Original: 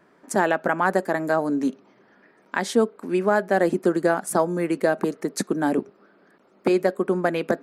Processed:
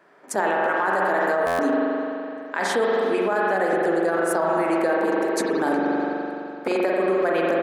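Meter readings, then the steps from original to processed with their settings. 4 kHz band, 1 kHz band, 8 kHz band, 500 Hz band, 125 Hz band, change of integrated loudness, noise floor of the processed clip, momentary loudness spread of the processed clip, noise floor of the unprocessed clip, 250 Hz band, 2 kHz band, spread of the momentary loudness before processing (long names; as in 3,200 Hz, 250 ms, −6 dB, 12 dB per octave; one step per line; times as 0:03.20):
+1.5 dB, +3.0 dB, −1.5 dB, +1.5 dB, −7.5 dB, +0.5 dB, −37 dBFS, 6 LU, −59 dBFS, −0.5 dB, +3.0 dB, 6 LU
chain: bass and treble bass −12 dB, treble −3 dB
mains-hum notches 60/120/180/240/300/360 Hz
far-end echo of a speakerphone 370 ms, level −16 dB
spring reverb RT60 2.8 s, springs 42 ms, chirp 50 ms, DRR −2 dB
brickwall limiter −16 dBFS, peak gain reduction 10.5 dB
low-shelf EQ 65 Hz −10 dB
buffer that repeats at 0:01.46, samples 512, times 10
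level +3 dB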